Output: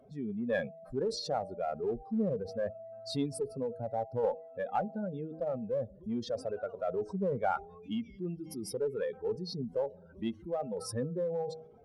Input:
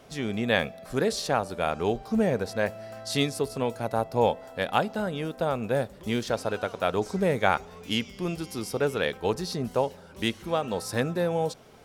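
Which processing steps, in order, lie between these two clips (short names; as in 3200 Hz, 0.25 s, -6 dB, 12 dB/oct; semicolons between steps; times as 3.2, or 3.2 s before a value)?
spectral contrast raised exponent 2.4; bell 10000 Hz +6.5 dB 0.39 oct; notch 3000 Hz, Q 18; de-hum 159.7 Hz, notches 5; in parallel at -8.5 dB: one-sided clip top -24.5 dBFS; on the sum: gain -9 dB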